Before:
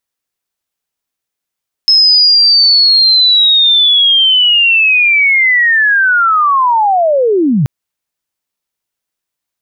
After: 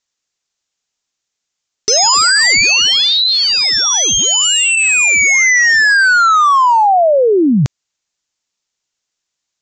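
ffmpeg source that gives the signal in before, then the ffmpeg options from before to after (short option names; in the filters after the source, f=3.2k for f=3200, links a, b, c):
-f lavfi -i "aevalsrc='pow(10,(-4-3.5*t/5.78)/20)*sin(2*PI*(5200*t-5080*t*t/(2*5.78)))':d=5.78:s=44100"
-af "aemphasis=mode=production:type=75kf,aresample=16000,aeval=exprs='0.473*(abs(mod(val(0)/0.473+3,4)-2)-1)':c=same,aresample=44100"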